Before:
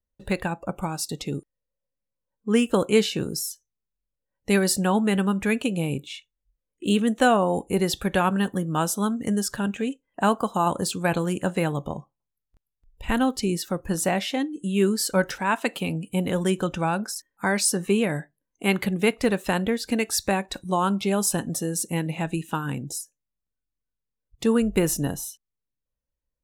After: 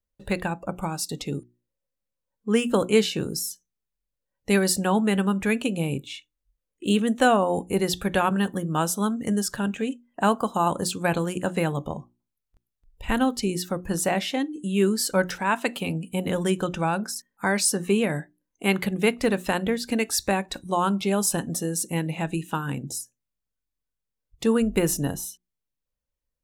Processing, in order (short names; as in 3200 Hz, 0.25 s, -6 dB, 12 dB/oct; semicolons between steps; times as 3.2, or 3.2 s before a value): notches 60/120/180/240/300/360 Hz